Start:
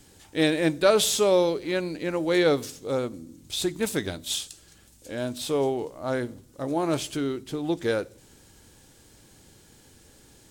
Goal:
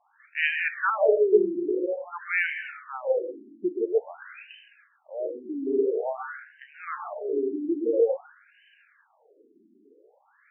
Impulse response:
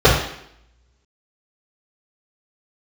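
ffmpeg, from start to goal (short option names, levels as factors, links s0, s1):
-filter_complex "[0:a]highpass=150,lowpass=6700,crystalizer=i=6:c=0,asplit=2[s0][s1];[1:a]atrim=start_sample=2205,lowpass=f=2100:p=1,adelay=126[s2];[s1][s2]afir=irnorm=-1:irlink=0,volume=0.0316[s3];[s0][s3]amix=inputs=2:normalize=0,afftfilt=real='re*between(b*sr/1024,270*pow(2200/270,0.5+0.5*sin(2*PI*0.49*pts/sr))/1.41,270*pow(2200/270,0.5+0.5*sin(2*PI*0.49*pts/sr))*1.41)':imag='im*between(b*sr/1024,270*pow(2200/270,0.5+0.5*sin(2*PI*0.49*pts/sr))/1.41,270*pow(2200/270,0.5+0.5*sin(2*PI*0.49*pts/sr))*1.41)':win_size=1024:overlap=0.75"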